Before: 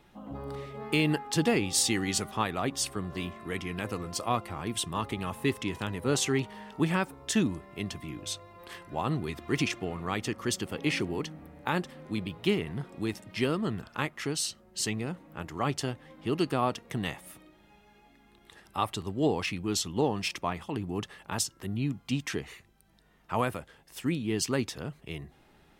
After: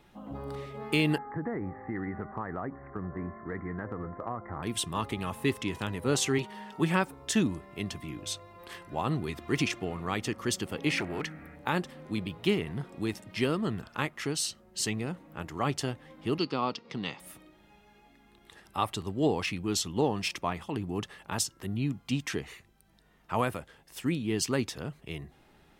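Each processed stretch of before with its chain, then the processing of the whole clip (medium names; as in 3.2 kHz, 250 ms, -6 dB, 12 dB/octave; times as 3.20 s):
1.18–4.63 s: steep low-pass 2 kHz 96 dB/octave + compression 5:1, threshold -30 dBFS
6.38–7.02 s: high-pass 150 Hz 6 dB/octave + comb 5.4 ms, depth 43%
10.98–11.56 s: high-order bell 1.8 kHz +11.5 dB 1.1 oct + overload inside the chain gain 22.5 dB + transformer saturation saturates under 460 Hz
16.38–17.20 s: cabinet simulation 180–5400 Hz, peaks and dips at 350 Hz -3 dB, 670 Hz -8 dB, 1.7 kHz -8 dB, 4.8 kHz +9 dB + upward compressor, threshold -46 dBFS
whole clip: none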